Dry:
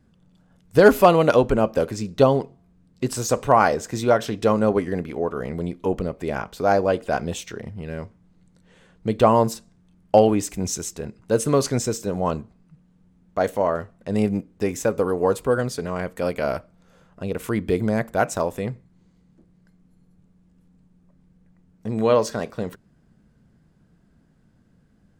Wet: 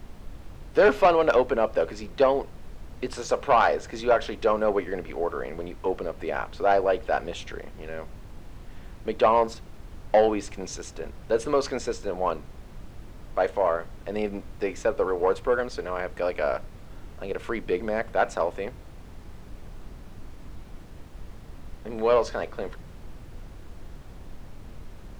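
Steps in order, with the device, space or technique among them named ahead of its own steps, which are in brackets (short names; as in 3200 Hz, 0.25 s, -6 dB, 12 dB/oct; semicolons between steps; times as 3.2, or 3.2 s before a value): aircraft cabin announcement (BPF 420–3800 Hz; soft clip -10.5 dBFS, distortion -15 dB; brown noise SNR 12 dB)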